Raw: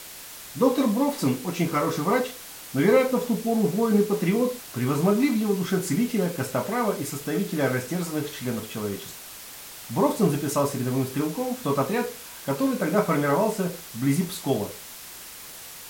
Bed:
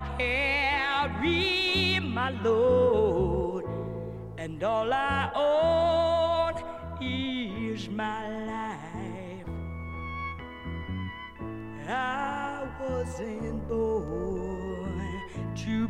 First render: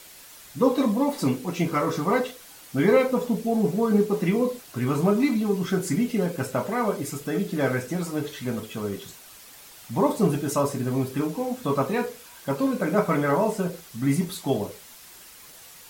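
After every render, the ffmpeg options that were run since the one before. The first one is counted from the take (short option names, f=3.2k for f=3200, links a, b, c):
-af "afftdn=nr=7:nf=-42"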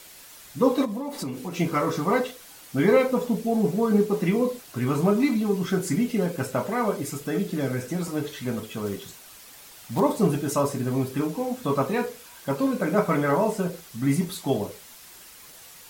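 -filter_complex "[0:a]asplit=3[a][b][c];[a]afade=t=out:st=0.84:d=0.02[d];[b]acompressor=threshold=-27dB:ratio=10:attack=3.2:release=140:knee=1:detection=peak,afade=t=in:st=0.84:d=0.02,afade=t=out:st=1.54:d=0.02[e];[c]afade=t=in:st=1.54:d=0.02[f];[d][e][f]amix=inputs=3:normalize=0,asettb=1/sr,asplit=3[g][h][i];[g]atrim=end=7.504[j];[h]atrim=start=7.5:end=8.08,asetpts=PTS-STARTPTS,afade=t=in:d=0.004:c=qsin,afade=t=out:st=0.576:d=0.004:c=qsin,acrossover=split=420|3000[k][l][m];[l]acompressor=threshold=-34dB:ratio=6:attack=3.2:release=140:knee=2.83:detection=peak[n];[k][n][m]amix=inputs=3:normalize=0[o];[i]atrim=start=8.076[p];[j][o]acrossfade=d=0.004:c1=hsin:c2=qsin[q];[q][p]acrossfade=d=0.004:c1=qsin:c2=hsin,asettb=1/sr,asplit=3[r][s][t];[r]atrim=end=8.864[u];[s]atrim=start=8.86:end=10,asetpts=PTS-STARTPTS,afade=t=in:d=0.004:c=qsin,afade=t=out:st=1.136:d=0.004:c=qsin,acrusher=bits=4:mode=log:mix=0:aa=0.000001[v];[t]atrim=start=9.996[w];[u][v]acrossfade=d=0.004:c1=hsin:c2=qsin[x];[x][w]acrossfade=d=0.004:c1=qsin:c2=hsin"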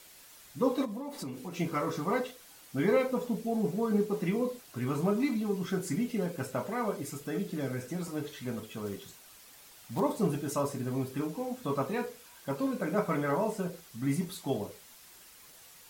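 -af "volume=-7.5dB"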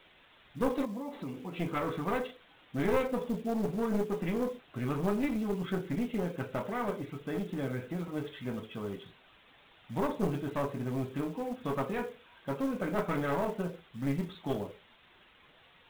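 -af "aresample=8000,aeval=exprs='clip(val(0),-1,0.0251)':c=same,aresample=44100,acrusher=bits=6:mode=log:mix=0:aa=0.000001"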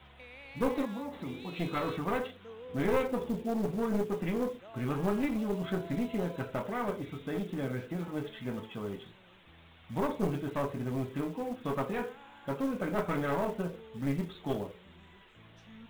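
-filter_complex "[1:a]volume=-23.5dB[a];[0:a][a]amix=inputs=2:normalize=0"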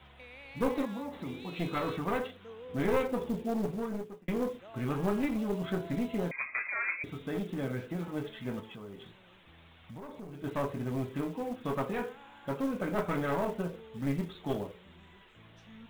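-filter_complex "[0:a]asettb=1/sr,asplit=3[a][b][c];[a]atrim=end=6.314[d];[b]atrim=start=6.31:end=7.04,asetpts=PTS-STARTPTS,afade=t=in:d=0.004:c=qsin,afade=t=out:st=0.726:d=0.004:c=qsin,lowpass=f=2.2k:t=q:w=0.5098,lowpass=f=2.2k:t=q:w=0.6013,lowpass=f=2.2k:t=q:w=0.9,lowpass=f=2.2k:t=q:w=2.563,afreqshift=-2600[e];[c]atrim=start=7.036[f];[d][e]acrossfade=d=0.004:c1=hsin:c2=qsin[g];[g][f]acrossfade=d=0.004:c1=qsin:c2=hsin,asettb=1/sr,asplit=3[h][i][j];[h]atrim=end=8.604[k];[i]atrim=start=8.6:end=10.44,asetpts=PTS-STARTPTS,afade=t=in:d=0.004:c=qsin,afade=t=out:st=1.836:d=0.004:c=qsin,acompressor=threshold=-43dB:ratio=4:attack=3.2:release=140:knee=1:detection=peak[l];[j]atrim=start=10.436[m];[k][l]acrossfade=d=0.004:c1=hsin:c2=qsin[n];[n][m]acrossfade=d=0.004:c1=qsin:c2=hsin,asplit=2[o][p];[o]atrim=end=4.28,asetpts=PTS-STARTPTS,afade=t=out:st=3.59:d=0.69[q];[p]atrim=start=4.28,asetpts=PTS-STARTPTS,afade=t=in:d=0.004:c=hsin[r];[q][r]concat=n=2:v=0:a=1"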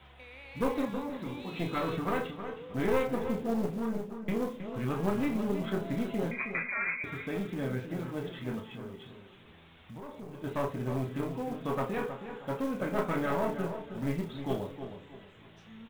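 -filter_complex "[0:a]asplit=2[a][b];[b]adelay=31,volume=-8.5dB[c];[a][c]amix=inputs=2:normalize=0,asplit=2[d][e];[e]adelay=317,lowpass=f=2.5k:p=1,volume=-9dB,asplit=2[f][g];[g]adelay=317,lowpass=f=2.5k:p=1,volume=0.33,asplit=2[h][i];[i]adelay=317,lowpass=f=2.5k:p=1,volume=0.33,asplit=2[j][k];[k]adelay=317,lowpass=f=2.5k:p=1,volume=0.33[l];[f][h][j][l]amix=inputs=4:normalize=0[m];[d][m]amix=inputs=2:normalize=0"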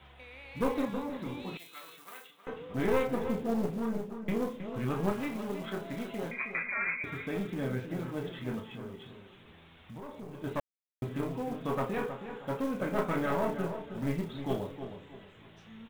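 -filter_complex "[0:a]asettb=1/sr,asplit=3[a][b][c];[a]atrim=end=1.574[d];[b]atrim=start=1.57:end=2.47,asetpts=PTS-STARTPTS,afade=t=in:d=0.004:c=qsin,afade=t=out:st=0.896:d=0.004:c=qsin,aderivative[e];[c]atrim=start=2.466[f];[d][e]acrossfade=d=0.004:c1=hsin:c2=qsin[g];[g][f]acrossfade=d=0.004:c1=qsin:c2=hsin,asettb=1/sr,asplit=3[h][i][j];[h]atrim=end=5.124[k];[i]atrim=start=5.12:end=6.67,asetpts=PTS-STARTPTS,afade=t=in:d=0.004:c=qsin,afade=t=out:st=1.546:d=0.004:c=qsin,lowshelf=f=430:g=-8[l];[j]atrim=start=6.666[m];[k][l]acrossfade=d=0.004:c1=hsin:c2=qsin[n];[n][m]acrossfade=d=0.004:c1=qsin:c2=hsin,asplit=3[o][p][q];[o]atrim=end=10.6,asetpts=PTS-STARTPTS,afade=t=out:st=10.596:d=0.004:c=hsin[r];[p]atrim=start=10.6:end=11.02,asetpts=PTS-STARTPTS,volume=0[s];[q]atrim=start=11.02,asetpts=PTS-STARTPTS,afade=t=in:d=0.004:c=hsin[t];[r][s][t]concat=n=3:v=0:a=1"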